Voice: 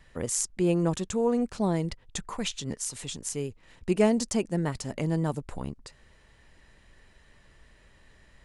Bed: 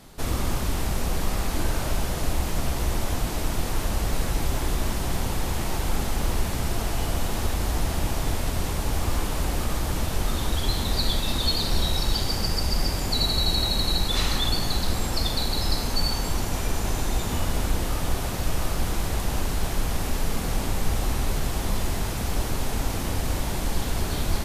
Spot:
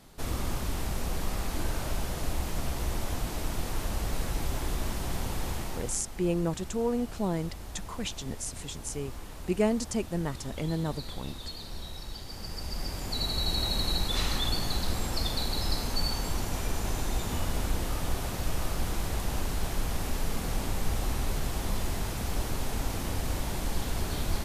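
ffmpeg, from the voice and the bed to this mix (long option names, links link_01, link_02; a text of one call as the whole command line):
ffmpeg -i stem1.wav -i stem2.wav -filter_complex "[0:a]adelay=5600,volume=-3.5dB[link_01];[1:a]volume=5.5dB,afade=type=out:start_time=5.5:duration=0.53:silence=0.298538,afade=type=in:start_time=12.25:duration=1.48:silence=0.266073[link_02];[link_01][link_02]amix=inputs=2:normalize=0" out.wav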